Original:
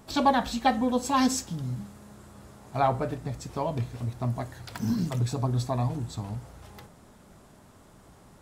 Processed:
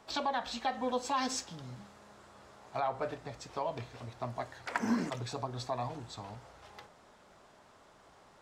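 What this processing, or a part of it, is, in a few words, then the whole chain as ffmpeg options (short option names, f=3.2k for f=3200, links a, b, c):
DJ mixer with the lows and highs turned down: -filter_complex "[0:a]acrossover=split=420 6600:gain=0.2 1 0.141[a][b][c];[a][b][c]amix=inputs=3:normalize=0,alimiter=limit=-22dB:level=0:latency=1:release=173,asettb=1/sr,asplit=3[d][e][f];[d]atrim=end=4.664[g];[e]atrim=start=4.66:end=5.1,asetpts=PTS-STARTPTS,afade=t=in:d=0.004:c=qsin,afade=t=out:st=0.436:d=0.004:c=qsin,equalizer=f=125:t=o:w=1:g=-9,equalizer=f=250:t=o:w=1:g=11,equalizer=f=500:t=o:w=1:g=7,equalizer=f=1k:t=o:w=1:g=6,equalizer=f=2k:t=o:w=1:g=11,equalizer=f=4k:t=o:w=1:g=-8,equalizer=f=8k:t=o:w=1:g=7[h];[f]atrim=start=5.096[i];[g][h]acrossfade=d=0.004:c1=hsin:c2=qsin[j];[j][i]acrossfade=d=0.004:c1=qsin:c2=hsin,volume=-1dB"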